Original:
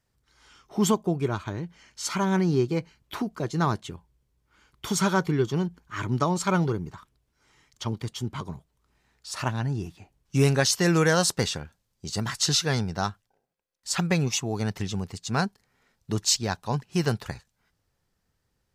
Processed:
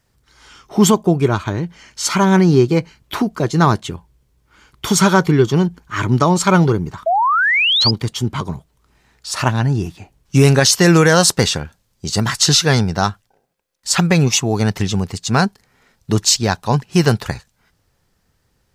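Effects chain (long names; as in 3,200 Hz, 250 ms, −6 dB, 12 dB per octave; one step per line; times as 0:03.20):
sound drawn into the spectrogram rise, 0:07.06–0:07.91, 630–5,100 Hz −26 dBFS
boost into a limiter +12.5 dB
level −1 dB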